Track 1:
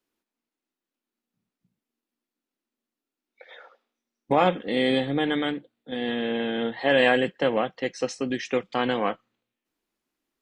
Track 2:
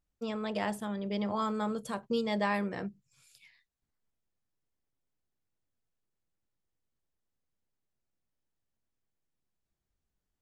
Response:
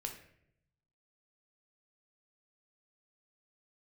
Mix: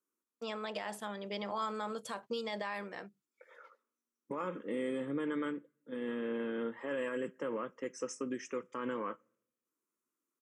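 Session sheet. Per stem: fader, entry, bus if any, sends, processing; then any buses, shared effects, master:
+0.5 dB, 0.00 s, send -22 dB, high-order bell 2.6 kHz -16 dB; peak limiter -18 dBFS, peak gain reduction 9.5 dB; static phaser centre 1.8 kHz, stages 4
+0.5 dB, 0.20 s, no send, gate -57 dBFS, range -19 dB; auto duck -8 dB, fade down 0.95 s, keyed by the first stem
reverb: on, RT60 0.70 s, pre-delay 10 ms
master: frequency weighting A; peak limiter -27.5 dBFS, peak gain reduction 9.5 dB

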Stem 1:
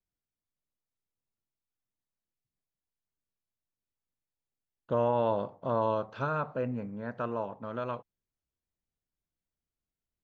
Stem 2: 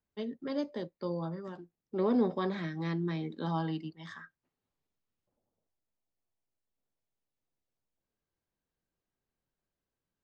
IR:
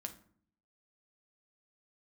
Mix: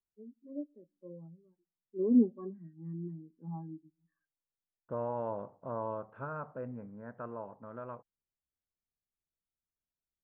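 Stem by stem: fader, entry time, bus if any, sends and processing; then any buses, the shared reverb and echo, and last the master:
-8.5 dB, 0.00 s, no send, none
+3.0 dB, 0.00 s, send -21.5 dB, spectral contrast expander 2.5:1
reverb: on, RT60 0.55 s, pre-delay 5 ms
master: low-pass 1.8 kHz 24 dB/octave

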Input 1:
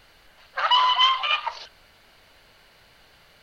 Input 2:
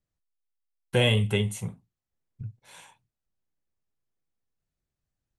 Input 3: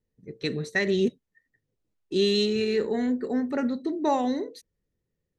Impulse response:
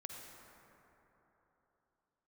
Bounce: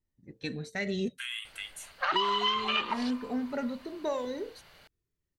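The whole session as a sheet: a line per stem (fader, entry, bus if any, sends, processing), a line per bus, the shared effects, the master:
-2.5 dB, 1.45 s, send -14 dB, none
-5.5 dB, 0.25 s, no send, steep high-pass 1.2 kHz 72 dB/octave; peak limiter -21 dBFS, peak gain reduction 7 dB
-1.0 dB, 0.00 s, no send, de-esser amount 75%; Shepard-style flanger falling 0.38 Hz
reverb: on, RT60 3.7 s, pre-delay 43 ms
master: compression 6:1, threshold -25 dBFS, peak gain reduction 9.5 dB

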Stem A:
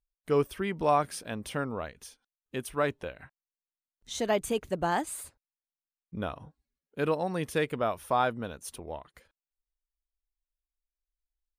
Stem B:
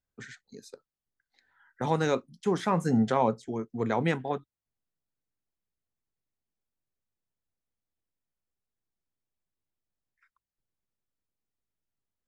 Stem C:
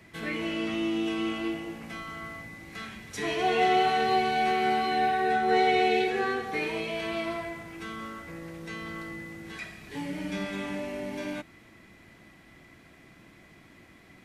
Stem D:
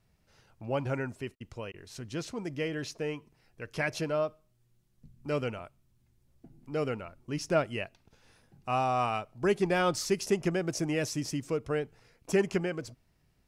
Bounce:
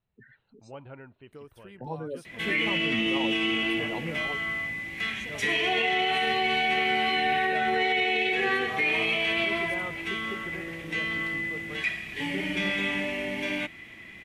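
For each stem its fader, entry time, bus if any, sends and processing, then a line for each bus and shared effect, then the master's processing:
-15.0 dB, 1.05 s, no send, compression, threshold -28 dBFS, peak gain reduction 8.5 dB
-8.0 dB, 0.00 s, no send, spectral gate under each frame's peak -10 dB strong
+1.5 dB, 2.25 s, no send, high-order bell 2.5 kHz +11 dB 1.1 oct
-10.5 dB, 0.00 s, no send, rippled Chebyshev low-pass 4.1 kHz, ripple 3 dB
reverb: none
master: peak limiter -17 dBFS, peak gain reduction 10.5 dB

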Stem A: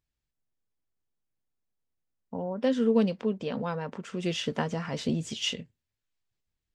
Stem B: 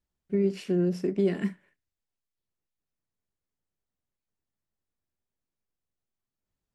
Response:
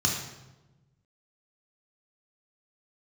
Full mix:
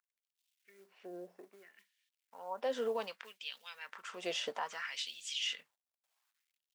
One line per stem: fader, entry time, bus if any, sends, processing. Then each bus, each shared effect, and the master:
-3.5 dB, 0.00 s, no send, none
-13.5 dB, 0.35 s, no send, low-pass that closes with the level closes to 1 kHz, closed at -25 dBFS; treble shelf 4.6 kHz +11.5 dB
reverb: none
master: companded quantiser 8-bit; LFO high-pass sine 0.63 Hz 630–3200 Hz; peak limiter -27 dBFS, peak gain reduction 10 dB

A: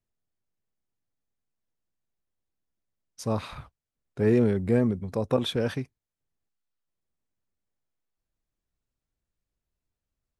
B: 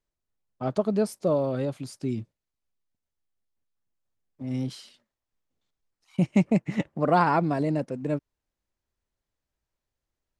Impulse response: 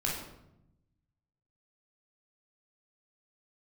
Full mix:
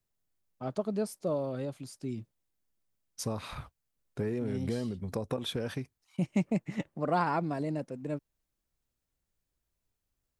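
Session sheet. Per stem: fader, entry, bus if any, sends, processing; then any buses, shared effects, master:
0.0 dB, 0.00 s, no send, compression 8:1, threshold -30 dBFS, peak gain reduction 13 dB
-7.5 dB, 0.00 s, no send, none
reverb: none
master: treble shelf 7.3 kHz +6.5 dB

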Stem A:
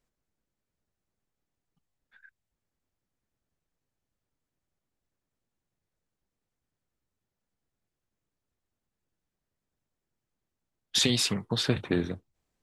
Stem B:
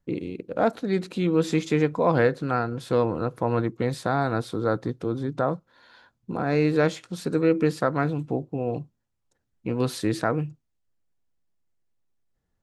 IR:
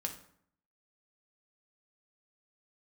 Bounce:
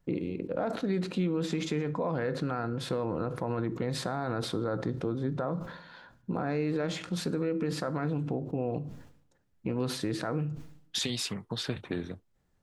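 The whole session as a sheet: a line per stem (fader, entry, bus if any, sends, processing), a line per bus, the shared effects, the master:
-2.0 dB, 0.00 s, no send, none
+0.5 dB, 0.00 s, send -7 dB, treble shelf 5.6 kHz -10 dB; peak limiter -18.5 dBFS, peak gain reduction 10.5 dB; decay stretcher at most 89 dB/s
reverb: on, RT60 0.65 s, pre-delay 3 ms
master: compression 1.5:1, threshold -38 dBFS, peak gain reduction 7.5 dB

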